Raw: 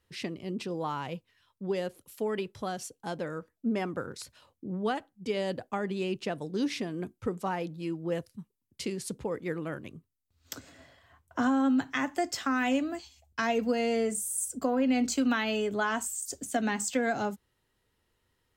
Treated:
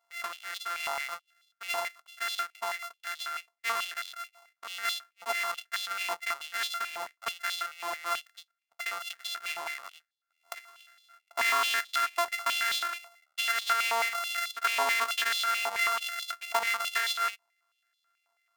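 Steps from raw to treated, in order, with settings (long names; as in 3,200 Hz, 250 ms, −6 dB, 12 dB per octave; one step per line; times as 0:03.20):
samples sorted by size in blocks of 64 samples
high-pass on a step sequencer 9.2 Hz 950–3,600 Hz
level −1 dB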